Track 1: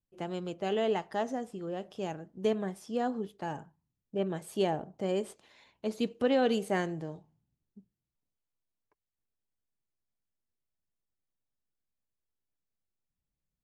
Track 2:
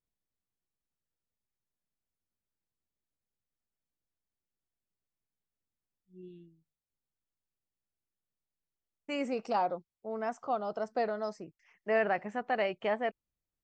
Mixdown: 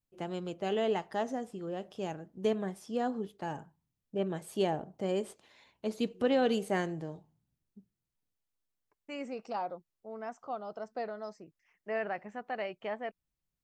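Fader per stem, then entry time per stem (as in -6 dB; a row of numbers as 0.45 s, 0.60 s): -1.0 dB, -6.0 dB; 0.00 s, 0.00 s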